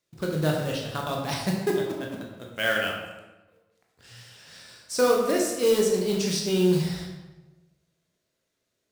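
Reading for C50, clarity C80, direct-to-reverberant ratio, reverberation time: 3.0 dB, 5.0 dB, -1.0 dB, 1.1 s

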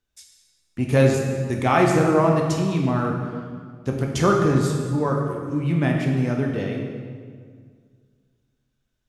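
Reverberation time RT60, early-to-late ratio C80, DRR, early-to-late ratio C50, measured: 1.9 s, 4.5 dB, 0.0 dB, 3.0 dB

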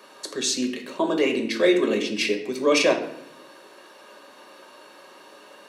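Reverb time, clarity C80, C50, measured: 0.80 s, 11.5 dB, 8.5 dB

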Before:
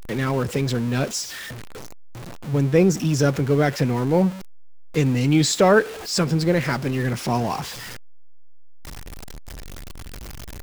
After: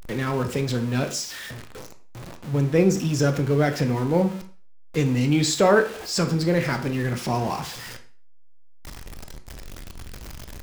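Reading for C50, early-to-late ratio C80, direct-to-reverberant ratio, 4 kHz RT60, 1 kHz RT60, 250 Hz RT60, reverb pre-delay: 12.0 dB, 16.5 dB, 7.0 dB, 0.40 s, 0.40 s, 0.40 s, 18 ms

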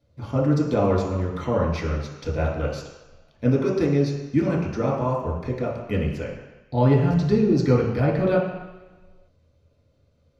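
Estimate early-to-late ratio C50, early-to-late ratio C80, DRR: 2.5 dB, 5.5 dB, -5.5 dB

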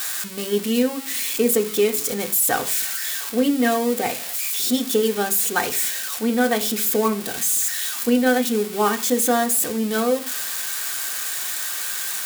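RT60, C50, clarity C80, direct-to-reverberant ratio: 0.45 s, 17.0 dB, 21.5 dB, 5.5 dB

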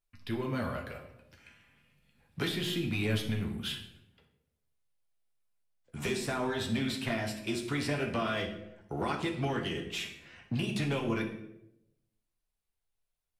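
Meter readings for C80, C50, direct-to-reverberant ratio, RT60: 11.0 dB, 8.0 dB, 1.0 dB, 0.85 s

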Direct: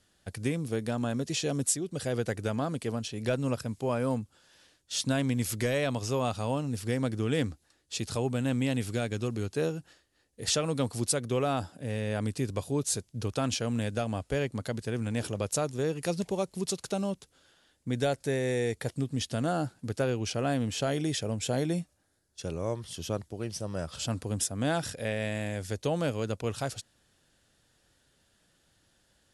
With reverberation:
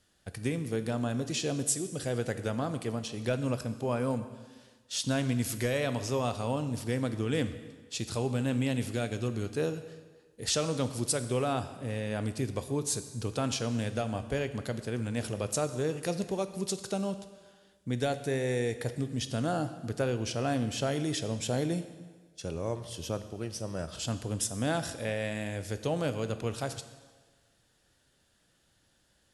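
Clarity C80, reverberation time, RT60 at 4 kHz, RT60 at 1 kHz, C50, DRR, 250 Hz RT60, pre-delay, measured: 13.0 dB, 1.4 s, 1.3 s, 1.4 s, 12.0 dB, 10.0 dB, 1.4 s, 7 ms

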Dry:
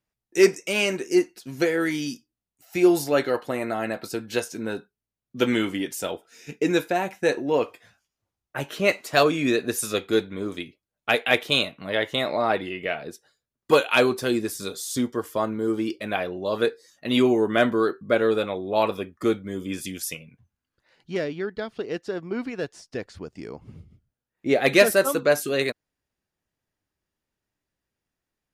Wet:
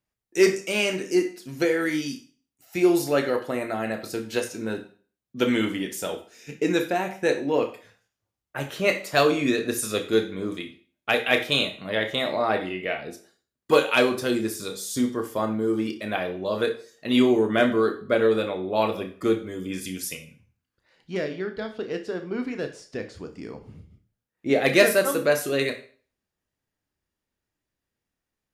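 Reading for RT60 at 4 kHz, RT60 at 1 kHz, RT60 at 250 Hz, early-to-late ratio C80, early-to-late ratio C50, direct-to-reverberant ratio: 0.40 s, 0.40 s, 0.40 s, 16.0 dB, 11.5 dB, 6.0 dB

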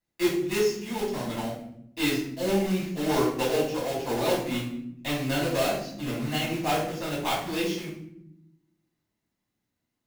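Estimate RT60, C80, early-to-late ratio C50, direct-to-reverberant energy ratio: 0.80 s, 8.0 dB, 4.0 dB, -8.5 dB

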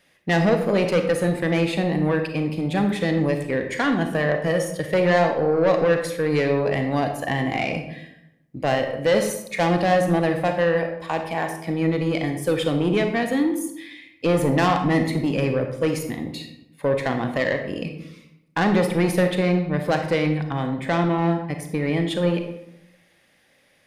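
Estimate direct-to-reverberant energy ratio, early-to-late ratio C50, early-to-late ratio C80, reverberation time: 5.0 dB, 7.0 dB, 9.5 dB, 0.80 s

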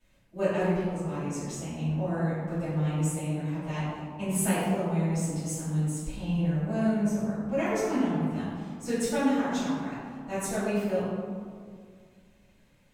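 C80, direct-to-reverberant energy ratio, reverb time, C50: 0.0 dB, -15.5 dB, 2.1 s, -2.5 dB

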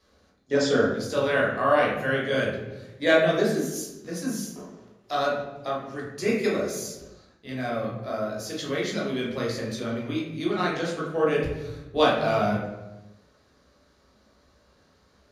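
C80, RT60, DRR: 6.0 dB, 1.1 s, -5.5 dB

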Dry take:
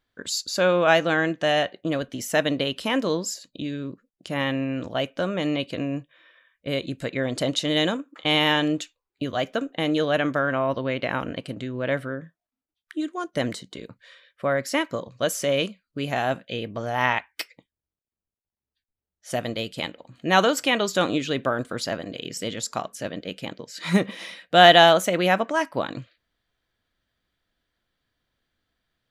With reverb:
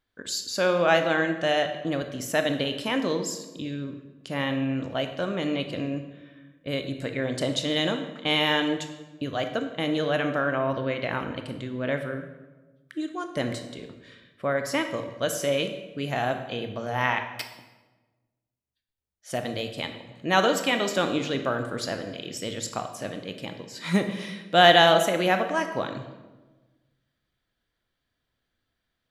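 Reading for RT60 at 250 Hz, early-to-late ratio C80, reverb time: 1.5 s, 10.5 dB, 1.2 s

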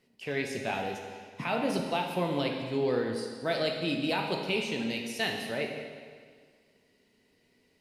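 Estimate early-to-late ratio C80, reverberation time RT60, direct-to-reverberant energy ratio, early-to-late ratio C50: 5.5 dB, 1.8 s, 1.0 dB, 3.5 dB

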